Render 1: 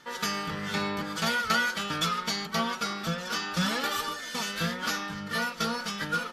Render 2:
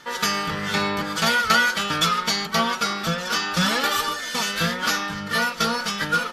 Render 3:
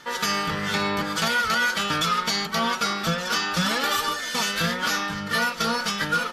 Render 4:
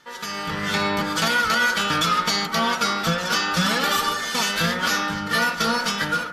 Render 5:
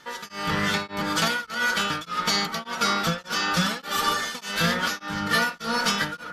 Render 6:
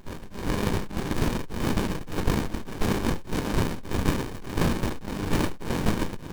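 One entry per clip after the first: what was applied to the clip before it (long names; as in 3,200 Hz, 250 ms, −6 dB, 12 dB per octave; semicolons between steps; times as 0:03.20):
parametric band 210 Hz −3 dB 1.9 octaves; level +8 dB
brickwall limiter −13.5 dBFS, peak gain reduction 8.5 dB
automatic gain control gain up to 11.5 dB; bucket-brigade delay 76 ms, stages 1,024, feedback 74%, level −13 dB; level −8 dB
speech leveller within 4 dB 0.5 s; tremolo along a rectified sine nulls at 1.7 Hz
compressing power law on the bin magnitudes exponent 0.34; harmonic generator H 4 −24 dB, 7 −31 dB, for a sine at −8 dBFS; windowed peak hold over 65 samples; level +5.5 dB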